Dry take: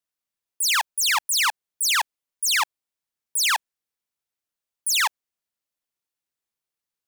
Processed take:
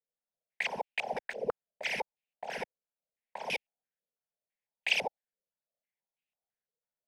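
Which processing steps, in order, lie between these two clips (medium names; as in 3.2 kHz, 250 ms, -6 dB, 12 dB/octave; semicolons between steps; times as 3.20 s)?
bit-reversed sample order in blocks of 32 samples; static phaser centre 320 Hz, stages 6; step-sequenced low-pass 6 Hz 490–2600 Hz; trim -3.5 dB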